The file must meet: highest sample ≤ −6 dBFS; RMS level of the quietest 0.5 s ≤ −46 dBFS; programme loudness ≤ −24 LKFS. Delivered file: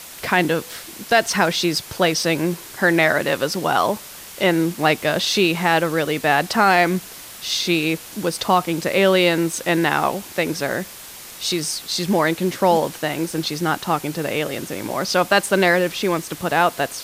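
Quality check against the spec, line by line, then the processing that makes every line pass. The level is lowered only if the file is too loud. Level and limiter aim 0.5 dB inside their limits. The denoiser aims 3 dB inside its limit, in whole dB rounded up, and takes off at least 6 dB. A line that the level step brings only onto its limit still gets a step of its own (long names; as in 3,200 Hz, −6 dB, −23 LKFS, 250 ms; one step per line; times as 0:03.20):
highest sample −4.0 dBFS: out of spec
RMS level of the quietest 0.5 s −38 dBFS: out of spec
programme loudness −19.5 LKFS: out of spec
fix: broadband denoise 6 dB, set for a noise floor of −38 dBFS
level −5 dB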